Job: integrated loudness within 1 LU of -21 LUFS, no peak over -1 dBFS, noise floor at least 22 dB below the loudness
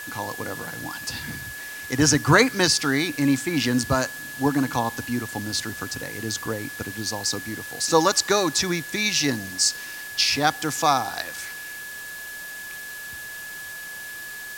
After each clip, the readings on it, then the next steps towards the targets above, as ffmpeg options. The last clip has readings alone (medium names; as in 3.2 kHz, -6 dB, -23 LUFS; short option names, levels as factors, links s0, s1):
steady tone 1.7 kHz; tone level -35 dBFS; noise floor -37 dBFS; noise floor target -46 dBFS; loudness -23.5 LUFS; peak level -1.5 dBFS; loudness target -21.0 LUFS
-> -af "bandreject=f=1700:w=30"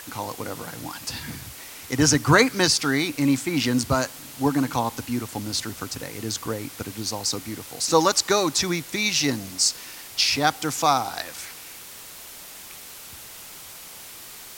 steady tone not found; noise floor -42 dBFS; noise floor target -46 dBFS
-> -af "afftdn=nr=6:nf=-42"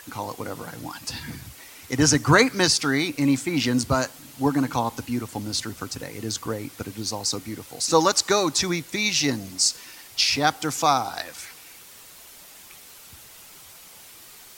noise floor -47 dBFS; loudness -23.5 LUFS; peak level -2.0 dBFS; loudness target -21.0 LUFS
-> -af "volume=1.33,alimiter=limit=0.891:level=0:latency=1"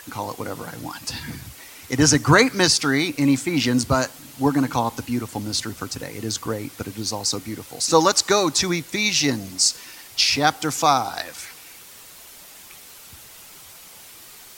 loudness -21.0 LUFS; peak level -1.0 dBFS; noise floor -44 dBFS